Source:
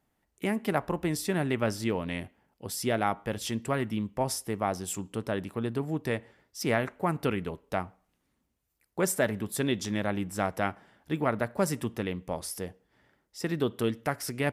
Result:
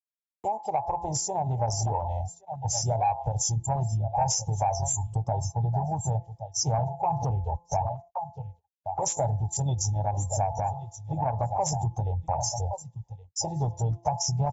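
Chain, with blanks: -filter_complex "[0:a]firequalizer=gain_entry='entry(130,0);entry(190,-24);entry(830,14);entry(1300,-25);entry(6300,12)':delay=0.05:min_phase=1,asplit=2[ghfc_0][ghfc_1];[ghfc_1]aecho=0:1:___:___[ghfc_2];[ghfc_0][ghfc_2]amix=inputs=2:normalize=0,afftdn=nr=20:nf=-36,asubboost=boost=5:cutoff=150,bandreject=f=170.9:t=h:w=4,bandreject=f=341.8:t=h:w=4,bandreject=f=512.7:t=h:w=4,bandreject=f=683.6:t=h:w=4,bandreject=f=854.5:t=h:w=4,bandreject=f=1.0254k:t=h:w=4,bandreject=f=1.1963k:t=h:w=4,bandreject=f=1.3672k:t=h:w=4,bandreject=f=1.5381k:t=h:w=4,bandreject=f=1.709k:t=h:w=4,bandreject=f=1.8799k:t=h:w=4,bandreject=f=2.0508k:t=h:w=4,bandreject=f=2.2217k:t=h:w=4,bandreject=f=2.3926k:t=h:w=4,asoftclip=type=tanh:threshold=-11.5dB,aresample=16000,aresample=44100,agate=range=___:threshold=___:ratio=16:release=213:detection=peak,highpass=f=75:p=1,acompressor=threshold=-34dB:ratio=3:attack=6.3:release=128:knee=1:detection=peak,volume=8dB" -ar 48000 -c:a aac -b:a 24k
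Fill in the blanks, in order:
1120, 0.211, -45dB, -55dB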